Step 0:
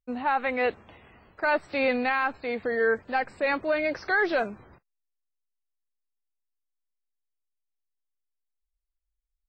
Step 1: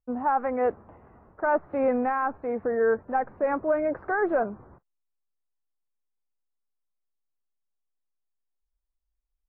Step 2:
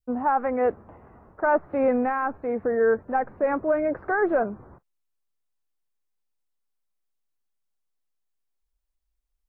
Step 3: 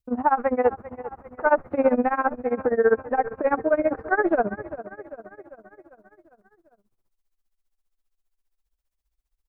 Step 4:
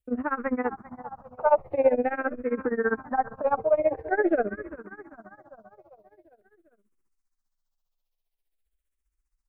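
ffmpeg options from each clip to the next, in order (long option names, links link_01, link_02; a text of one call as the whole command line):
ffmpeg -i in.wav -af "lowpass=frequency=1300:width=0.5412,lowpass=frequency=1300:width=1.3066,volume=2dB" out.wav
ffmpeg -i in.wav -af "adynamicequalizer=threshold=0.0112:dfrequency=940:dqfactor=1.1:tfrequency=940:tqfactor=1.1:attack=5:release=100:ratio=0.375:range=2:mode=cutabove:tftype=bell,volume=3dB" out.wav
ffmpeg -i in.wav -af "aecho=1:1:388|776|1164|1552|1940|2328:0.168|0.0957|0.0545|0.0311|0.0177|0.0101,tremolo=f=15:d=0.91,volume=5.5dB" out.wav
ffmpeg -i in.wav -filter_complex "[0:a]asplit=2[link_01][link_02];[link_02]afreqshift=-0.46[link_03];[link_01][link_03]amix=inputs=2:normalize=1" out.wav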